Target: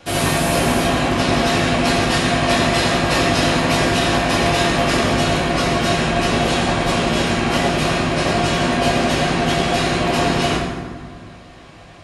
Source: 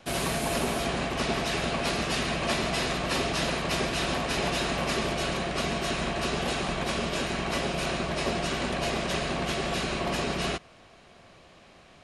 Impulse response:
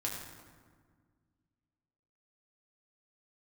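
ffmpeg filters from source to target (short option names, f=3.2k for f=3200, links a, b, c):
-filter_complex "[1:a]atrim=start_sample=2205[a];[0:a][a]afir=irnorm=-1:irlink=0,volume=8.5dB"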